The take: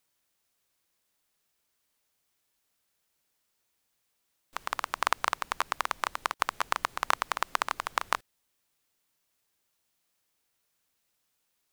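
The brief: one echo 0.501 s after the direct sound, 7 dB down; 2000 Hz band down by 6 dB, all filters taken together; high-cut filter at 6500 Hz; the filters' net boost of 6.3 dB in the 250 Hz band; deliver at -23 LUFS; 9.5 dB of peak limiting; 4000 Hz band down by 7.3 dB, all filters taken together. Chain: LPF 6500 Hz; bell 250 Hz +8.5 dB; bell 2000 Hz -7 dB; bell 4000 Hz -6.5 dB; limiter -18 dBFS; echo 0.501 s -7 dB; gain +17 dB

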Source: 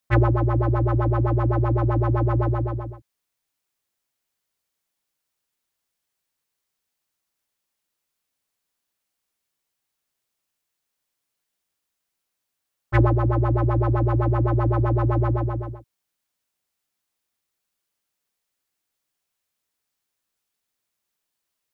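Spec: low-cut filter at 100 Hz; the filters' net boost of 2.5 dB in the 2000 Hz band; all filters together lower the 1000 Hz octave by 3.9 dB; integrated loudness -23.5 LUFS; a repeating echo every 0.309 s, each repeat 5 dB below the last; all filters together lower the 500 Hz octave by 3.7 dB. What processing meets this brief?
HPF 100 Hz; bell 500 Hz -4.5 dB; bell 1000 Hz -5 dB; bell 2000 Hz +5.5 dB; feedback echo 0.309 s, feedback 56%, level -5 dB; gain -3.5 dB

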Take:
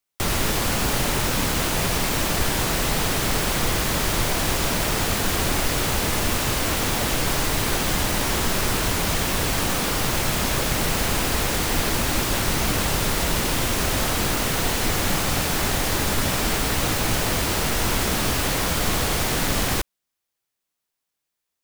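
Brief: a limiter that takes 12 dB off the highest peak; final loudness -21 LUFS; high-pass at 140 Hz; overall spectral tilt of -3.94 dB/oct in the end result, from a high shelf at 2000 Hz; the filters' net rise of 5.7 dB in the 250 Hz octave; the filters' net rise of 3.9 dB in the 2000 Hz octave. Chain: HPF 140 Hz; bell 250 Hz +8 dB; high shelf 2000 Hz -5.5 dB; bell 2000 Hz +8 dB; gain +7.5 dB; limiter -13 dBFS

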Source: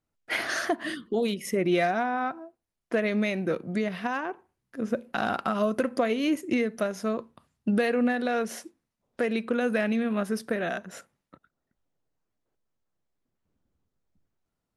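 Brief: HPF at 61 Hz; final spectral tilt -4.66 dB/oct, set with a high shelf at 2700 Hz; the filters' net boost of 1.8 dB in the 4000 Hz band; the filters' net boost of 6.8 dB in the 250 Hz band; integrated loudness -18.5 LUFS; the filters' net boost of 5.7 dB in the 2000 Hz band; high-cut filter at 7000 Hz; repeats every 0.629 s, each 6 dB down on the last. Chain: HPF 61 Hz; LPF 7000 Hz; bell 250 Hz +8 dB; bell 2000 Hz +8.5 dB; high shelf 2700 Hz -6 dB; bell 4000 Hz +4 dB; feedback echo 0.629 s, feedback 50%, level -6 dB; gain +4.5 dB

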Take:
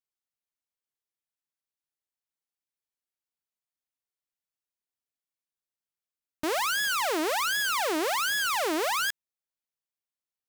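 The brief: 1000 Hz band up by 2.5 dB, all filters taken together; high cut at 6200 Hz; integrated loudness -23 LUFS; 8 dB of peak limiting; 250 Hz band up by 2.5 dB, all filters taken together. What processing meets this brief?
LPF 6200 Hz; bell 250 Hz +3.5 dB; bell 1000 Hz +3 dB; gain +10 dB; limiter -18.5 dBFS

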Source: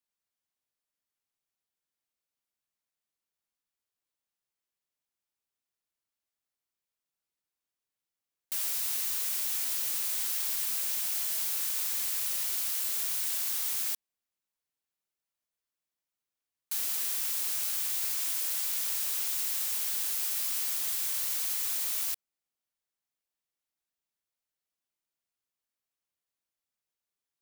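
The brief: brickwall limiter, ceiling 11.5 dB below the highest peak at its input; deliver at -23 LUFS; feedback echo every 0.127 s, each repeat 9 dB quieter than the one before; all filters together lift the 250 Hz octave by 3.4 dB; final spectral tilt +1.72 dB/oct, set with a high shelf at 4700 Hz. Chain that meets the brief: bell 250 Hz +4.5 dB; high shelf 4700 Hz -6.5 dB; limiter -35 dBFS; feedback echo 0.127 s, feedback 35%, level -9 dB; gain +18 dB

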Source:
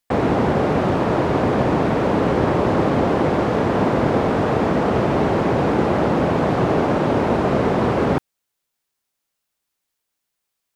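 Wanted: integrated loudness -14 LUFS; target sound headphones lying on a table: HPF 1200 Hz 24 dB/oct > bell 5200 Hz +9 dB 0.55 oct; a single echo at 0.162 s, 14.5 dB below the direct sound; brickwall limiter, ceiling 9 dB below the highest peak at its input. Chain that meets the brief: limiter -14 dBFS; HPF 1200 Hz 24 dB/oct; bell 5200 Hz +9 dB 0.55 oct; echo 0.162 s -14.5 dB; gain +19.5 dB

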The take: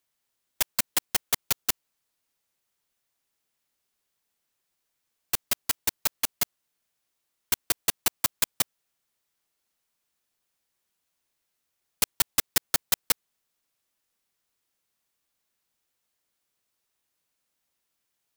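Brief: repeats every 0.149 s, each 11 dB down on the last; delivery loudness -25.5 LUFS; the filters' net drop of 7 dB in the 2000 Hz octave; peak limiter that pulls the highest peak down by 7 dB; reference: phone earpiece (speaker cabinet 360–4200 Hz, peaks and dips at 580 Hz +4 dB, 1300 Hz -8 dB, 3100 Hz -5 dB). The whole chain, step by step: bell 2000 Hz -6.5 dB; limiter -14 dBFS; speaker cabinet 360–4200 Hz, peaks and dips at 580 Hz +4 dB, 1300 Hz -8 dB, 3100 Hz -5 dB; feedback echo 0.149 s, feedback 28%, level -11 dB; gain +17.5 dB

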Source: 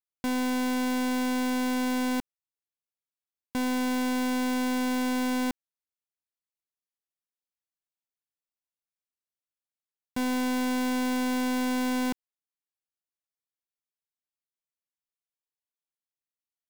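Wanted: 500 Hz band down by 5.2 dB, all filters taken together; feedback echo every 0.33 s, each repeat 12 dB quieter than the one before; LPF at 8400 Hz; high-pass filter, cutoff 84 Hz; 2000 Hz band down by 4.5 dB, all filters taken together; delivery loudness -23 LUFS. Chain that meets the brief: HPF 84 Hz; LPF 8400 Hz; bell 500 Hz -5 dB; bell 2000 Hz -6 dB; feedback echo 0.33 s, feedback 25%, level -12 dB; gain +8 dB

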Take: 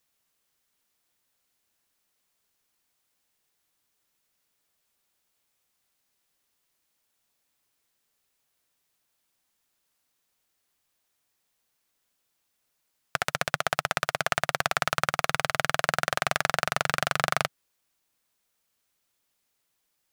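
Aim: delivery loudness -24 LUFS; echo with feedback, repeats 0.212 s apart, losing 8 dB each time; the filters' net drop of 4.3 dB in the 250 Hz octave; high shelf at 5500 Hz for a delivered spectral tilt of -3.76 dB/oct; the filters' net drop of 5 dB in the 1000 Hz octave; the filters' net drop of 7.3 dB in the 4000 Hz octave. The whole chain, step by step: bell 250 Hz -8.5 dB; bell 1000 Hz -6 dB; bell 4000 Hz -7.5 dB; high shelf 5500 Hz -5 dB; feedback echo 0.212 s, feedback 40%, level -8 dB; gain +7 dB

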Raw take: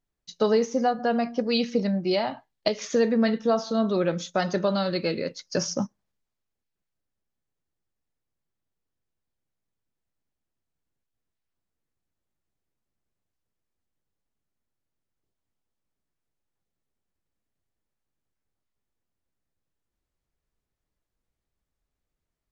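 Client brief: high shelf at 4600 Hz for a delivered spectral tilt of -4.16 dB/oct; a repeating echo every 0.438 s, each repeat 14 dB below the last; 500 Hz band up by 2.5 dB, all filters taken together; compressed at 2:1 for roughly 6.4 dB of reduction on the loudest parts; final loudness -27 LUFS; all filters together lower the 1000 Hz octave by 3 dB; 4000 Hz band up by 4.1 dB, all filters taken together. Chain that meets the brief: bell 500 Hz +5 dB; bell 1000 Hz -9 dB; bell 4000 Hz +7 dB; high shelf 4600 Hz -3.5 dB; compressor 2:1, threshold -27 dBFS; feedback echo 0.438 s, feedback 20%, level -14 dB; gain +1.5 dB

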